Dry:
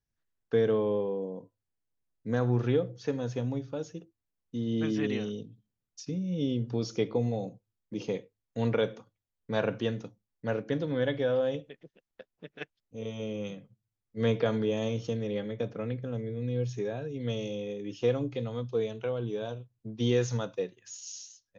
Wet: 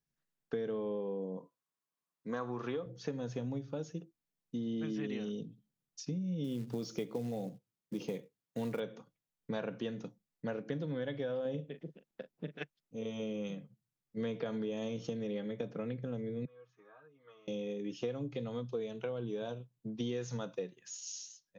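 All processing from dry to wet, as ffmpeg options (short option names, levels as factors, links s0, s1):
-filter_complex "[0:a]asettb=1/sr,asplit=3[s0][s1][s2];[s0]atrim=end=1.374[s3];[s1]atrim=start=1.37:end=2.86,asetpts=PTS-STARTPTS,afade=t=in:d=0.004:c=qsin,afade=t=out:st=1.486:d=0.004:c=qsin,highpass=f=400:p=1,equalizer=f=1100:w=4.3:g=12.5[s4];[s2]atrim=start=2.856[s5];[s3][s4]acrossfade=d=0.004:c1=hsin:c2=qsin[s6];[s6][s5]acrossfade=d=0.004:c1=qsin:c2=hsin,asettb=1/sr,asplit=3[s7][s8][s9];[s7]atrim=end=6.444[s10];[s8]atrim=start=6.44:end=8.8,asetpts=PTS-STARTPTS,afade=t=in:d=0.004:c=qsin,afade=t=out:st=2.356:d=0.004:c=qsin,highpass=f=47:w=0.5412,highpass=f=47:w=1.3066,acrusher=bits=6:mode=log:mix=0:aa=0.000001[s11];[s9]atrim=start=8.796[s12];[s10][s11]acrossfade=d=0.004:c1=hsin:c2=qsin[s13];[s13][s12]acrossfade=d=0.004:c1=qsin:c2=hsin,asettb=1/sr,asplit=3[s14][s15][s16];[s14]atrim=end=11.454[s17];[s15]atrim=start=11.45:end=12.57,asetpts=PTS-STARTPTS,afade=t=in:d=0.004:c=qsin,afade=t=out:st=1.116:d=0.004:c=qsin,equalizer=f=220:t=o:w=2.9:g=7,asplit=2[s18][s19];[s19]adelay=40,volume=0.266[s20];[s18][s20]amix=inputs=2:normalize=0,atrim=end_sample=49392[s21];[s16]atrim=start=12.566[s22];[s17][s21]acrossfade=d=0.004:c1=hsin:c2=qsin[s23];[s23][s22]acrossfade=d=0.004:c1=qsin:c2=hsin,asettb=1/sr,asplit=3[s24][s25][s26];[s24]atrim=end=16.454[s27];[s25]atrim=start=16.45:end=17.48,asetpts=PTS-STARTPTS,afade=t=in:d=0.004:c=qsin,afade=t=out:st=1.026:d=0.004:c=qsin,bandpass=f=1200:t=q:w=10,aecho=1:1:6.4:0.91,atrim=end_sample=45423[s28];[s26]atrim=start=17.476[s29];[s27][s28]acrossfade=d=0.004:c1=hsin:c2=qsin[s30];[s30][s29]acrossfade=d=0.004:c1=qsin:c2=hsin,lowshelf=f=120:t=q:w=3:g=-6.5,acompressor=threshold=0.0224:ratio=5,volume=0.841"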